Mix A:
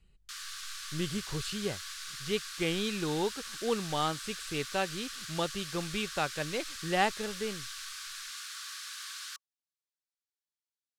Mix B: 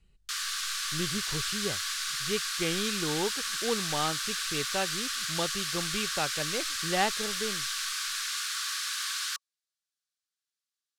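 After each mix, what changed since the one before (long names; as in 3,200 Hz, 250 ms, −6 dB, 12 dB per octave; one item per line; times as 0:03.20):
background +9.5 dB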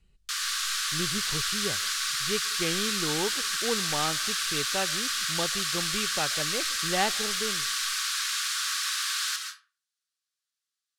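reverb: on, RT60 0.35 s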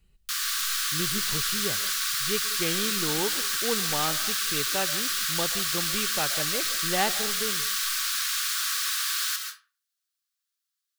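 speech: send +9.5 dB
master: remove low-pass filter 9,200 Hz 12 dB per octave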